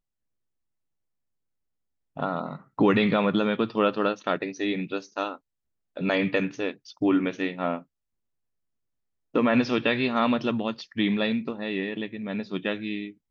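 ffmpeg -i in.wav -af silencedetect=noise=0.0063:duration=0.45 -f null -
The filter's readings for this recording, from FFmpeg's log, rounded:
silence_start: 0.00
silence_end: 2.16 | silence_duration: 2.16
silence_start: 5.37
silence_end: 5.96 | silence_duration: 0.59
silence_start: 7.82
silence_end: 9.34 | silence_duration: 1.52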